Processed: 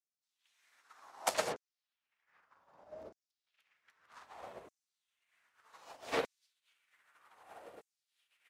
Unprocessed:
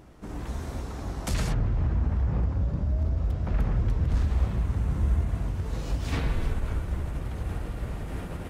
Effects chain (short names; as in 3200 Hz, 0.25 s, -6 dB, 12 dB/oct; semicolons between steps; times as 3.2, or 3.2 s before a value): dark delay 0.217 s, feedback 83%, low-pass 770 Hz, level -14 dB; LFO high-pass saw down 0.64 Hz 440–6600 Hz; upward expander 2.5:1, over -54 dBFS; gain +1.5 dB